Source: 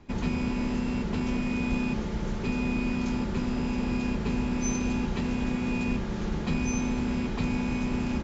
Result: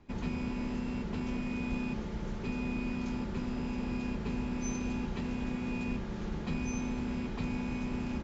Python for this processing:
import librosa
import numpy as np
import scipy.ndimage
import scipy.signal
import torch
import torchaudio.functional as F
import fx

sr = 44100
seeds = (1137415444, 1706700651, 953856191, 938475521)

y = fx.high_shelf(x, sr, hz=6600.0, db=-5.0)
y = y * 10.0 ** (-6.5 / 20.0)